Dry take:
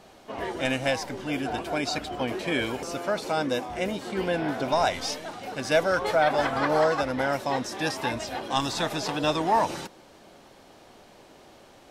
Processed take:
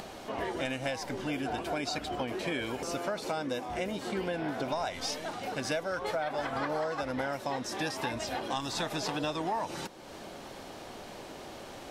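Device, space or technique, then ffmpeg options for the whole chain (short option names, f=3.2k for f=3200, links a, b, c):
upward and downward compression: -af "acompressor=mode=upward:threshold=-36dB:ratio=2.5,acompressor=threshold=-30dB:ratio=6"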